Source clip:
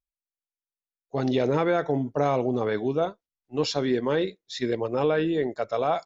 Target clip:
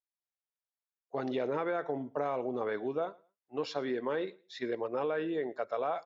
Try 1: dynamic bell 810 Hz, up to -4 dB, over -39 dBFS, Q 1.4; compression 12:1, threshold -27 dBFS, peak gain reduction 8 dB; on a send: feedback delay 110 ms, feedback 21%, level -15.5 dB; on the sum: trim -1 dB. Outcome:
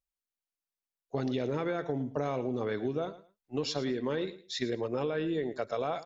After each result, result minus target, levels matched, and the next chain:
echo-to-direct +8.5 dB; 1 kHz band -3.5 dB
dynamic bell 810 Hz, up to -4 dB, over -39 dBFS, Q 1.4; compression 12:1, threshold -27 dBFS, peak gain reduction 8 dB; on a send: feedback delay 110 ms, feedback 21%, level -24 dB; on the sum: trim -1 dB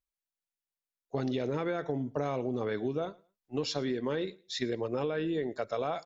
1 kHz band -3.5 dB
dynamic bell 810 Hz, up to -4 dB, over -39 dBFS, Q 1.4; band-pass filter 940 Hz, Q 0.78; compression 12:1, threshold -27 dBFS, peak gain reduction 4.5 dB; on a send: feedback delay 110 ms, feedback 21%, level -24 dB; on the sum: trim -1 dB

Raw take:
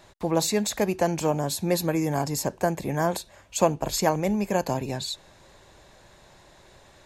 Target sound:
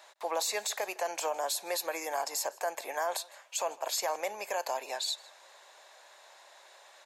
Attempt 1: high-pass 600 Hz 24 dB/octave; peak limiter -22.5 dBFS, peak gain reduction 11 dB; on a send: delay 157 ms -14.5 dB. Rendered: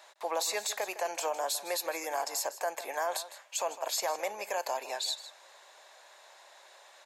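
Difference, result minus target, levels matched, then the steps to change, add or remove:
echo-to-direct +8.5 dB
change: delay 157 ms -23 dB

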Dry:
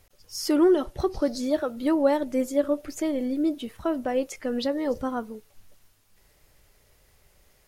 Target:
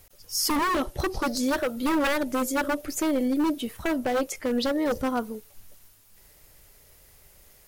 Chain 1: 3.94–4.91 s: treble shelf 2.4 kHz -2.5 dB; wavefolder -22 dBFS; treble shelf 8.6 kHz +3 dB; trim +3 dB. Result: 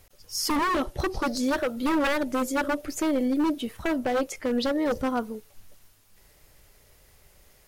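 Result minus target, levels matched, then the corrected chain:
8 kHz band -3.0 dB
3.94–4.91 s: treble shelf 2.4 kHz -2.5 dB; wavefolder -22 dBFS; treble shelf 8.6 kHz +11 dB; trim +3 dB

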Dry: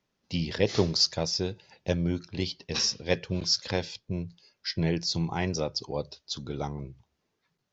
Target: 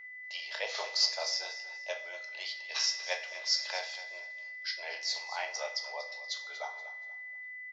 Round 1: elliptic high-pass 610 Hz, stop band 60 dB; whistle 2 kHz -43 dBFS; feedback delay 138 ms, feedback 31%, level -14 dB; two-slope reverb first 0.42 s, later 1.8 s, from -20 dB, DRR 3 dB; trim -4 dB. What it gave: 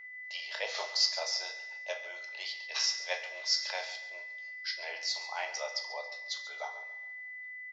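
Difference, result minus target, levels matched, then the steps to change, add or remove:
echo 100 ms early
change: feedback delay 238 ms, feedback 31%, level -14 dB

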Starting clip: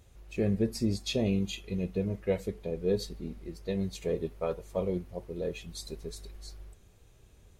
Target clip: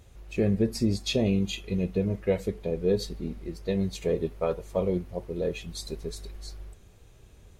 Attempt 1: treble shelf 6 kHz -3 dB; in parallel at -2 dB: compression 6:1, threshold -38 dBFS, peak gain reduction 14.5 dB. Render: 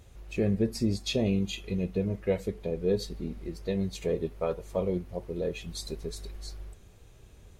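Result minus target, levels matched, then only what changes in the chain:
compression: peak gain reduction +9 dB
change: compression 6:1, threshold -27 dBFS, peak gain reduction 5 dB

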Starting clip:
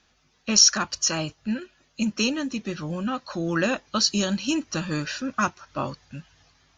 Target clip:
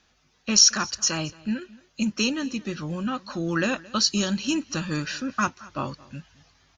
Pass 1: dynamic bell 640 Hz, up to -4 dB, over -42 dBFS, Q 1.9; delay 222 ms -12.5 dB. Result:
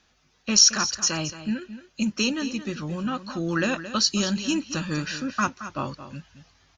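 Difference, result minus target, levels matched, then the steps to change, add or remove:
echo-to-direct +9.5 dB
change: delay 222 ms -22 dB

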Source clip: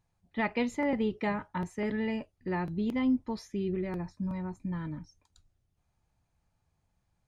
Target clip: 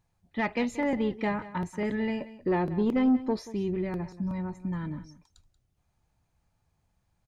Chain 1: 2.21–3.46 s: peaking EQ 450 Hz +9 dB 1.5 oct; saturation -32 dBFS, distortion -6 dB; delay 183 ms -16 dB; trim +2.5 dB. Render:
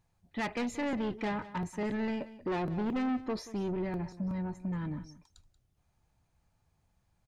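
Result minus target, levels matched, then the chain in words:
saturation: distortion +10 dB
2.21–3.46 s: peaking EQ 450 Hz +9 dB 1.5 oct; saturation -20.5 dBFS, distortion -16 dB; delay 183 ms -16 dB; trim +2.5 dB

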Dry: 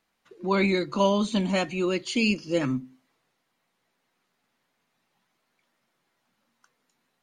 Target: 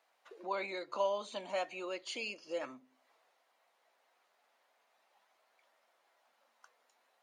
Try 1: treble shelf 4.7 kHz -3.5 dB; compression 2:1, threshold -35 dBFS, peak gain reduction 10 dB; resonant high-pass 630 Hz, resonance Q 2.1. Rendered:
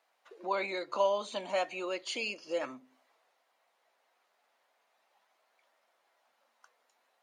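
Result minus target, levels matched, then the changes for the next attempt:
compression: peak gain reduction -5 dB
change: compression 2:1, threshold -44.5 dBFS, peak gain reduction 15 dB

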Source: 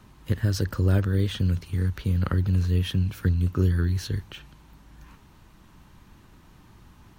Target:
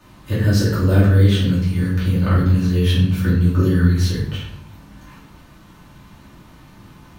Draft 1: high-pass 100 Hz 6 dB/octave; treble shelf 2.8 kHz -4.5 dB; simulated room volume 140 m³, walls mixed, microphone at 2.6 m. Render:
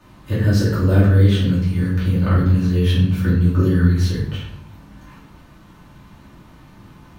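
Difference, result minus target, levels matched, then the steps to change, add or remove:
4 kHz band -2.5 dB
remove: treble shelf 2.8 kHz -4.5 dB

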